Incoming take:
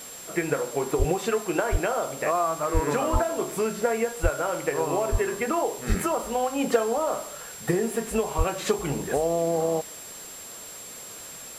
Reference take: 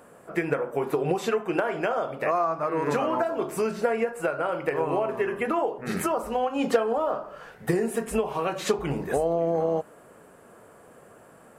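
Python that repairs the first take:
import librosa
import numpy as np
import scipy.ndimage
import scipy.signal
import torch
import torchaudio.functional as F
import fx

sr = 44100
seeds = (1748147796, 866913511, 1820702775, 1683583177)

y = fx.fix_declick_ar(x, sr, threshold=6.5)
y = fx.notch(y, sr, hz=7500.0, q=30.0)
y = fx.fix_deplosive(y, sr, at_s=(0.98, 1.71, 2.73, 3.12, 4.22, 5.11, 5.88, 8.37))
y = fx.noise_reduce(y, sr, print_start_s=10.25, print_end_s=10.75, reduce_db=11.0)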